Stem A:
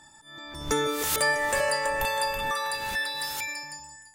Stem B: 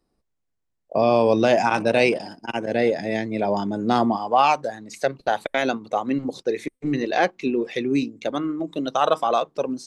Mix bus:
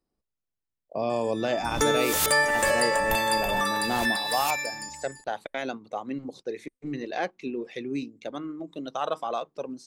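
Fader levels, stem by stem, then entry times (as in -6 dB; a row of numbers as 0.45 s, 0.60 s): +2.5 dB, -9.5 dB; 1.10 s, 0.00 s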